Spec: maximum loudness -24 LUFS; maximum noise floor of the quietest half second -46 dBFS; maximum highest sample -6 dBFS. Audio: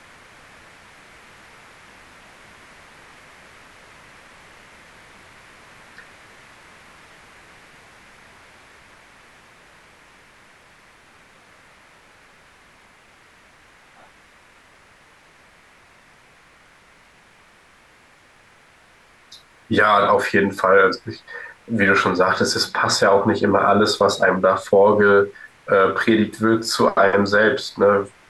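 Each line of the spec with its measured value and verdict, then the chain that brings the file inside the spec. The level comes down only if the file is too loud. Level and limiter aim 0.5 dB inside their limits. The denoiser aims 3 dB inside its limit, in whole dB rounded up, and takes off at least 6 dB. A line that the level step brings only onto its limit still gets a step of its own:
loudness -17.0 LUFS: fail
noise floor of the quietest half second -52 dBFS: OK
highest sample -5.5 dBFS: fail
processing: gain -7.5 dB

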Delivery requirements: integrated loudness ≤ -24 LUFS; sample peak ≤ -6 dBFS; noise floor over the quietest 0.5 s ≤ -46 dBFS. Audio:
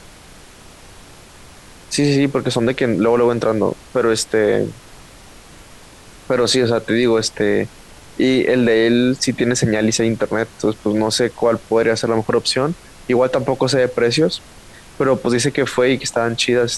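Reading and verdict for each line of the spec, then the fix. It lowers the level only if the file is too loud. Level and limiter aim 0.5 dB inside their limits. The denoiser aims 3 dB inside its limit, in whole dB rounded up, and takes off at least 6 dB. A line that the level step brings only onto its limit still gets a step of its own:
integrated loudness -17.0 LUFS: fail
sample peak -5.5 dBFS: fail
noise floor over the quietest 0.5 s -42 dBFS: fail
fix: gain -7.5 dB

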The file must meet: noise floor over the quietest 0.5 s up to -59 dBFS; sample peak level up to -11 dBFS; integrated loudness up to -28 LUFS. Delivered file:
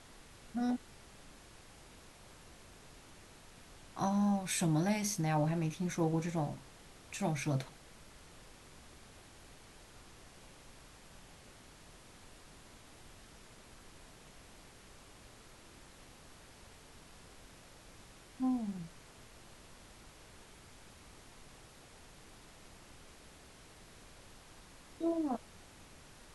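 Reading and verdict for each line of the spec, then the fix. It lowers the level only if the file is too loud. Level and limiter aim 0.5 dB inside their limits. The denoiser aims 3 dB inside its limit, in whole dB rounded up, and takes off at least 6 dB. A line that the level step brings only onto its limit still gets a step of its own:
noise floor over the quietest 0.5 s -57 dBFS: fail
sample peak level -20.0 dBFS: OK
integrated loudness -35.5 LUFS: OK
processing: denoiser 6 dB, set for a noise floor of -57 dBFS

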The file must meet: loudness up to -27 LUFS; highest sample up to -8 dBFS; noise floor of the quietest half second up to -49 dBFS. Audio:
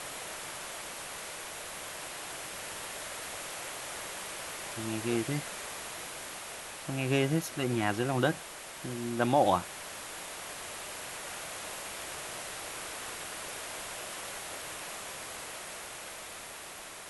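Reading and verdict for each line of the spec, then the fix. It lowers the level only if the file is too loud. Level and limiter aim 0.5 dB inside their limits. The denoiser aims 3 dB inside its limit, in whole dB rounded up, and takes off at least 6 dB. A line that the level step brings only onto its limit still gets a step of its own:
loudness -35.5 LUFS: OK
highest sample -13.0 dBFS: OK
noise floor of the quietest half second -45 dBFS: fail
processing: denoiser 7 dB, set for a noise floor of -45 dBFS

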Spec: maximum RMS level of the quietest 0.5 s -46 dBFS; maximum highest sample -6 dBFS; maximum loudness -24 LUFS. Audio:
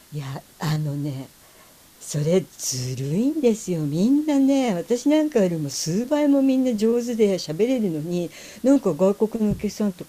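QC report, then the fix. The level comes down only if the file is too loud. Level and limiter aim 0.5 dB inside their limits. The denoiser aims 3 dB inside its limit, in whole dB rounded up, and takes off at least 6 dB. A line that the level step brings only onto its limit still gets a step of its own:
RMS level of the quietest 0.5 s -51 dBFS: OK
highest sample -7.0 dBFS: OK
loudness -22.0 LUFS: fail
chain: gain -2.5 dB

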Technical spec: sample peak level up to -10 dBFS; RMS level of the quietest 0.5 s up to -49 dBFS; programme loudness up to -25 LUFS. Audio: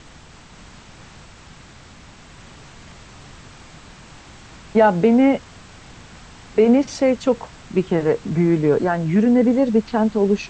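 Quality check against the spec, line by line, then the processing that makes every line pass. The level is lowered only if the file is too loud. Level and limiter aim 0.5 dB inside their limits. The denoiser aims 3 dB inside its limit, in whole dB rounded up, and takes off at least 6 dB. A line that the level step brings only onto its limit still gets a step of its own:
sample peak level -4.0 dBFS: fail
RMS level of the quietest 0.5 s -44 dBFS: fail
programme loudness -18.0 LUFS: fail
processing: gain -7.5 dB

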